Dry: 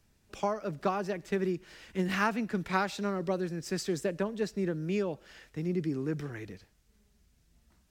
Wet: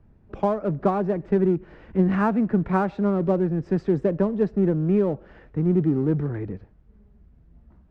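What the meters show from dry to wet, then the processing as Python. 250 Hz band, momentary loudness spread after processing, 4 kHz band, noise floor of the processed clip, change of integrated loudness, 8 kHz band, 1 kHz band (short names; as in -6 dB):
+11.5 dB, 8 LU, under -10 dB, -55 dBFS, +9.5 dB, under -15 dB, +5.5 dB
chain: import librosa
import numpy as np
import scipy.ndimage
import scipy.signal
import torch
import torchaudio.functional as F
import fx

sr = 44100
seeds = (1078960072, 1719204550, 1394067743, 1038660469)

p1 = scipy.signal.sosfilt(scipy.signal.butter(2, 1100.0, 'lowpass', fs=sr, output='sos'), x)
p2 = fx.low_shelf(p1, sr, hz=400.0, db=6.0)
p3 = np.clip(p2, -10.0 ** (-35.0 / 20.0), 10.0 ** (-35.0 / 20.0))
p4 = p2 + (p3 * librosa.db_to_amplitude(-10.0))
y = p4 * librosa.db_to_amplitude(6.0)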